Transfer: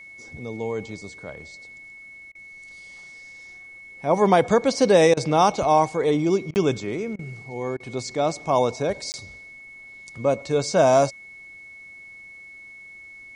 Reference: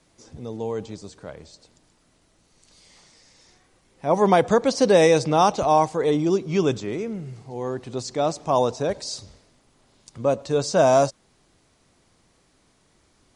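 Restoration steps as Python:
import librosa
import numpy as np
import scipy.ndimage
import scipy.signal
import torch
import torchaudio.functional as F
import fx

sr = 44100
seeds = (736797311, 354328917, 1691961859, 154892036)

y = fx.notch(x, sr, hz=2200.0, q=30.0)
y = fx.fix_interpolate(y, sr, at_s=(6.54, 9.12), length_ms=19.0)
y = fx.fix_interpolate(y, sr, at_s=(2.32, 5.14, 6.51, 7.16, 7.77), length_ms=29.0)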